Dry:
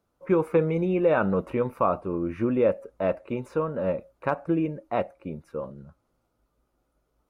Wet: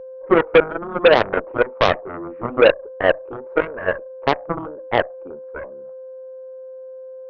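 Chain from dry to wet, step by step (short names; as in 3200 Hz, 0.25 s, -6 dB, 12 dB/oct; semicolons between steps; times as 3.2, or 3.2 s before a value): Butterworth band-pass 580 Hz, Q 0.99; whine 520 Hz -39 dBFS; added harmonics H 5 -14 dB, 6 -26 dB, 7 -8 dB, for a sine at -11.5 dBFS; gain +8 dB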